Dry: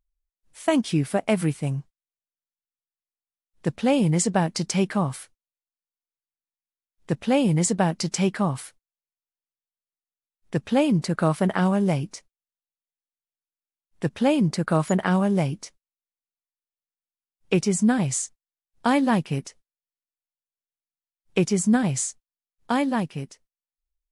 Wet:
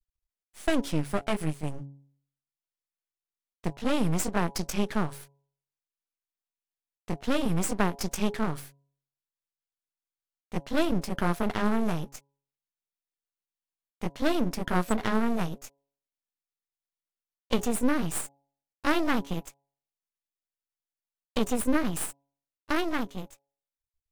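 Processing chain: pitch bend over the whole clip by +4 st starting unshifted; half-wave rectifier; de-hum 139.5 Hz, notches 7

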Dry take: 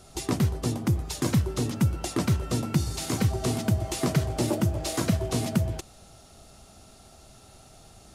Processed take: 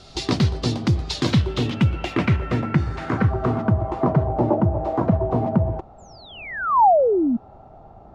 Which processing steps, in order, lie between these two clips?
1.26–2.56 s: careless resampling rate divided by 2×, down filtered, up zero stuff; 5.98–7.37 s: painted sound fall 220–7700 Hz -25 dBFS; low-pass sweep 4.3 kHz -> 870 Hz, 1.08–4.24 s; trim +5 dB

